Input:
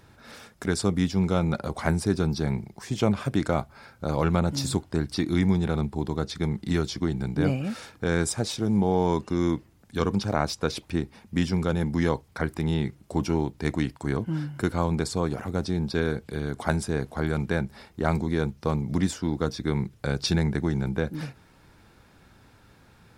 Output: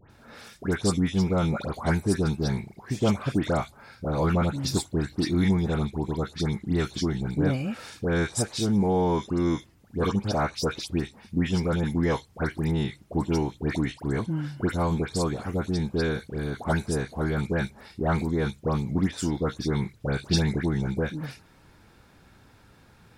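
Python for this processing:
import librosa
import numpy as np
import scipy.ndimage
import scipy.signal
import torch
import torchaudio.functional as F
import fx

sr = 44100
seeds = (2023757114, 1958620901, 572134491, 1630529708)

y = fx.dispersion(x, sr, late='highs', ms=104.0, hz=1900.0)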